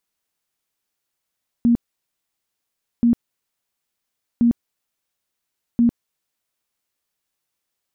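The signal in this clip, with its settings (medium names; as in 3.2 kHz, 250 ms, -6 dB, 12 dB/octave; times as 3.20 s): tone bursts 236 Hz, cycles 24, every 1.38 s, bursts 4, -11.5 dBFS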